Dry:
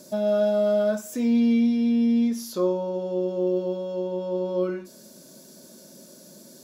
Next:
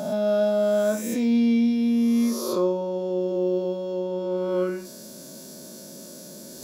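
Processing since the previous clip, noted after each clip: reverse spectral sustain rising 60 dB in 1.34 s; reverse; upward compressor, threshold -35 dBFS; reverse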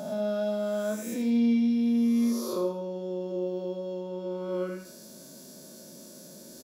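feedback delay 81 ms, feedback 35%, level -9 dB; trim -6.5 dB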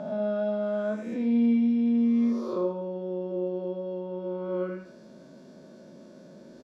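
low-pass 2.2 kHz 12 dB/octave; trim +1 dB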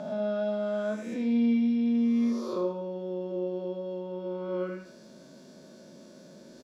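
treble shelf 2.8 kHz +10.5 dB; trim -2 dB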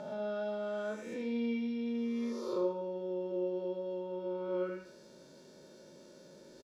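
comb 2.2 ms, depth 51%; trim -4.5 dB

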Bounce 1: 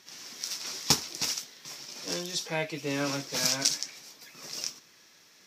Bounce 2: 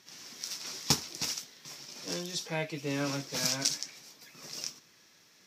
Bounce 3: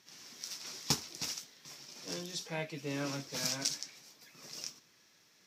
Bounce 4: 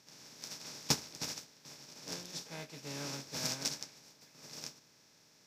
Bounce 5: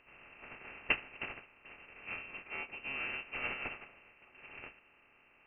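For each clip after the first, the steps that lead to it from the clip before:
peaking EQ 120 Hz +4.5 dB 2.3 oct; trim -3.5 dB
flange 1.9 Hz, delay 0.9 ms, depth 9 ms, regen -85%
spectral levelling over time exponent 0.4; upward expansion 2.5:1, over -40 dBFS
frequency inversion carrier 2.9 kHz; trim +4 dB

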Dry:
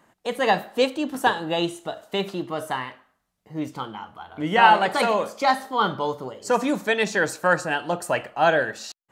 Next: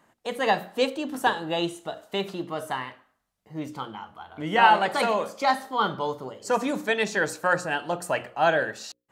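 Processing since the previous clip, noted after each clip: hum notches 60/120/180/240/300/360/420/480/540 Hz; trim -2.5 dB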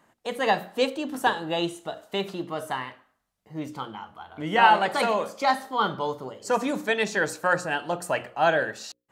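no audible change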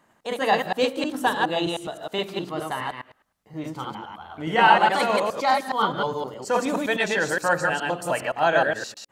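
chunks repeated in reverse 104 ms, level -1 dB

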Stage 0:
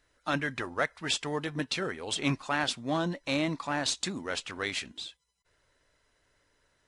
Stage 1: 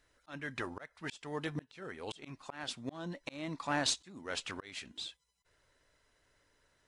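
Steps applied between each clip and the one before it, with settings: slow attack 450 ms; trim -1.5 dB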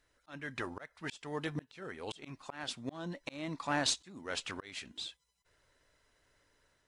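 level rider gain up to 3 dB; trim -2.5 dB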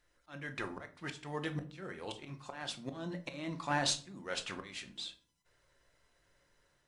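simulated room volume 340 m³, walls furnished, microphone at 0.89 m; trim -1.5 dB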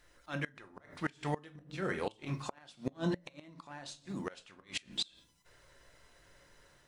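inverted gate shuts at -32 dBFS, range -25 dB; trim +9.5 dB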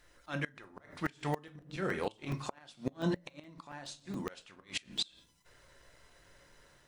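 crackling interface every 0.14 s, samples 128, zero, from 0.64 s; trim +1 dB

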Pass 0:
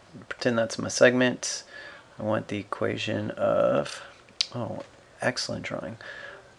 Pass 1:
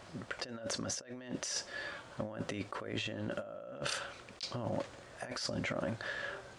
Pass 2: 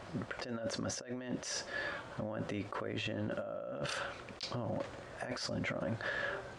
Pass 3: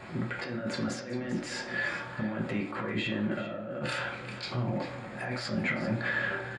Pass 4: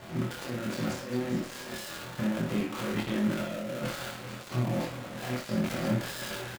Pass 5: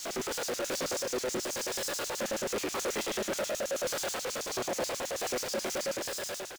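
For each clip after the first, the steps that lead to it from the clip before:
compressor with a negative ratio -35 dBFS, ratio -1; trim -6 dB
treble shelf 3.3 kHz -8.5 dB; peak limiter -32.5 dBFS, peak gain reduction 10 dB; trim +5 dB
delay 394 ms -13 dB; reverberation RT60 0.55 s, pre-delay 3 ms, DRR -2 dB
dead-time distortion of 0.25 ms; on a send: early reflections 24 ms -3.5 dB, 61 ms -8.5 dB
fade out at the end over 1.12 s; LFO high-pass square 9.3 Hz 460–6100 Hz; power-law waveshaper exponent 0.35; trim -6.5 dB

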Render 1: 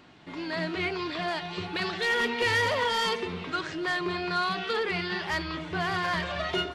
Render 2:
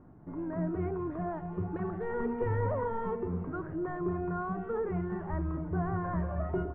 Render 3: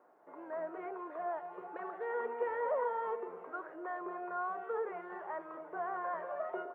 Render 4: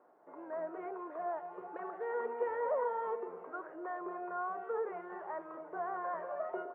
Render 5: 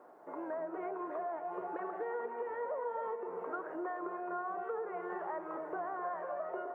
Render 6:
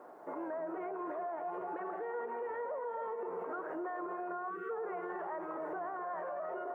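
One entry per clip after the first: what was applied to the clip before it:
low-pass 1.4 kHz 24 dB/octave; tilt EQ -4 dB/octave; trim -7 dB
Chebyshev high-pass 520 Hz, order 3; trim +1 dB
treble shelf 2.3 kHz -9.5 dB; trim +1 dB
compression, threshold -45 dBFS, peak gain reduction 14.5 dB; echo whose repeats swap between lows and highs 261 ms, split 880 Hz, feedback 56%, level -8.5 dB; trim +8 dB
time-frequency box 4.50–4.71 s, 510–1100 Hz -27 dB; peak limiter -37 dBFS, peak gain reduction 9 dB; trim +4.5 dB

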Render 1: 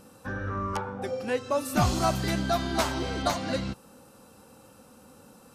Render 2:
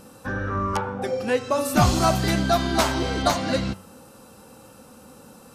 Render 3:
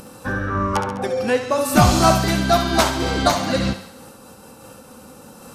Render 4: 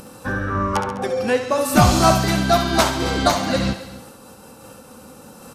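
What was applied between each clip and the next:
de-hum 94.57 Hz, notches 34; trim +6 dB
upward compressor, threshold -42 dBFS; on a send: thinning echo 68 ms, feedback 59%, high-pass 420 Hz, level -7.5 dB; on the sum: random flutter of the level, depth 50%; trim +6 dB
delay 269 ms -18 dB

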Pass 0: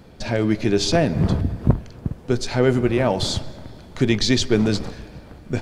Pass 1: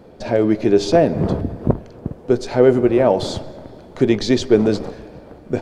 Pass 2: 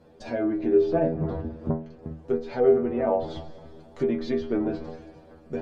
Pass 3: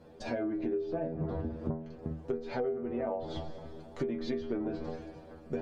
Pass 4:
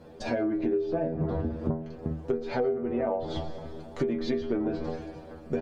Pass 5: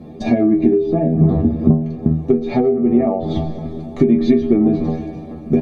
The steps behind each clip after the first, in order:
peaking EQ 490 Hz +13 dB 2.4 oct; trim -5.5 dB
inharmonic resonator 78 Hz, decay 0.37 s, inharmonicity 0.002; low-pass that closes with the level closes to 1.7 kHz, closed at -22.5 dBFS
compression 12:1, threshold -30 dBFS, peak gain reduction 17 dB
echo from a far wall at 20 m, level -24 dB; trim +5.5 dB
reverberation RT60 0.15 s, pre-delay 3 ms, DRR 14.5 dB; trim +2 dB

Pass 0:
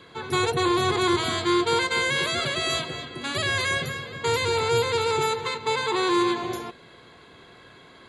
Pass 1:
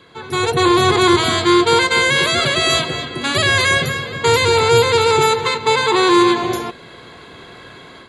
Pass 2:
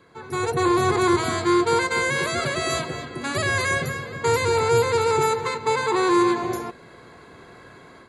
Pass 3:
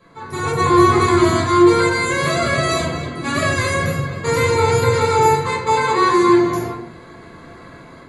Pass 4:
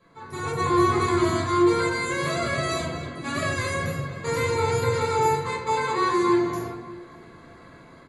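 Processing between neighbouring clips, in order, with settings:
level rider gain up to 9.5 dB; trim +1.5 dB
peaking EQ 3.3 kHz -11.5 dB 0.71 oct; trim -6 dB
simulated room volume 580 m³, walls furnished, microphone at 5.9 m; trim -3 dB
echo from a far wall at 100 m, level -19 dB; trim -8 dB

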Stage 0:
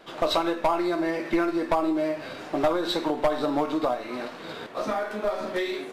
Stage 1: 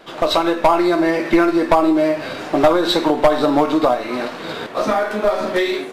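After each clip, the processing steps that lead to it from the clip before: level rider gain up to 3.5 dB; trim +6.5 dB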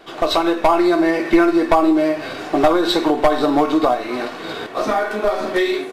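comb 2.7 ms, depth 31%; trim -1 dB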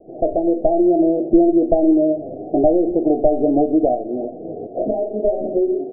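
steep low-pass 720 Hz 96 dB/octave; trim +1 dB

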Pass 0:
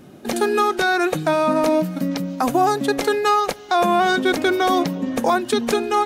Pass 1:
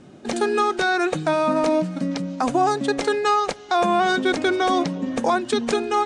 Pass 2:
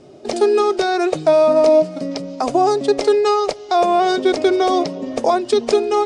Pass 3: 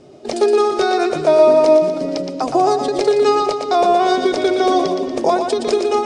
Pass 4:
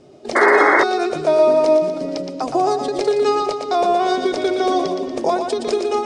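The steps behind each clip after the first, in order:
steep low-pass 9.1 kHz 48 dB/octave; trim -2 dB
graphic EQ with 31 bands 200 Hz -10 dB, 400 Hz +9 dB, 630 Hz +10 dB, 1.6 kHz -7 dB, 5 kHz +8 dB
two-band feedback delay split 430 Hz, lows 403 ms, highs 118 ms, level -6 dB; endings held to a fixed fall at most 110 dB/s
painted sound noise, 0.35–0.84 s, 280–2200 Hz -11 dBFS; trim -3 dB

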